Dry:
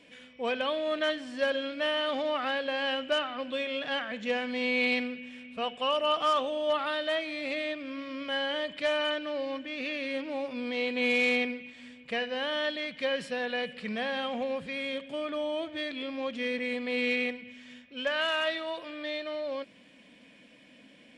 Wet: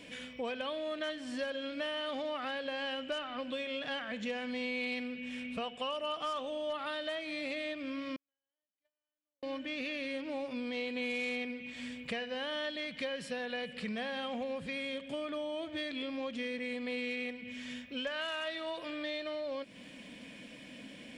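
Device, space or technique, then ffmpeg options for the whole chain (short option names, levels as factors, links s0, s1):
ASMR close-microphone chain: -filter_complex "[0:a]lowshelf=f=180:g=7,acompressor=threshold=0.00794:ratio=4,highshelf=f=6000:g=7,asettb=1/sr,asplit=3[s0][s1][s2];[s0]atrim=end=8.164[s3];[s1]atrim=start=8.16:end=9.43,asetpts=PTS-STARTPTS,afade=t=in:d=0.004:c=qsin,afade=t=out:st=1.266:d=0.004:c=qsin,agate=range=0.00112:threshold=0.0224:ratio=16:detection=peak[s4];[s2]atrim=start=9.426[s5];[s3][s4]acrossfade=d=0.004:c1=hsin:c2=qsin[s6];[s6][s5]acrossfade=d=0.004:c1=qsin:c2=hsin,volume=1.68"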